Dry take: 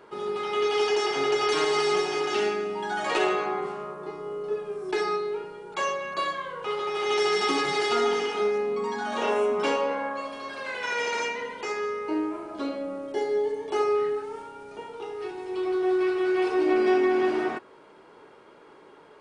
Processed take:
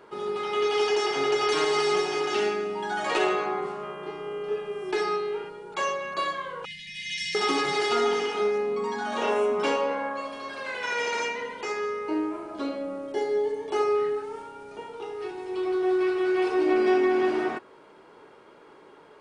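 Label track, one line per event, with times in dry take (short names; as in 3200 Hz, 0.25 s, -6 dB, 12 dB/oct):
3.820000	5.480000	buzz 400 Hz, harmonics 8, -47 dBFS -2 dB/oct
6.650000	7.350000	brick-wall FIR band-stop 230–1700 Hz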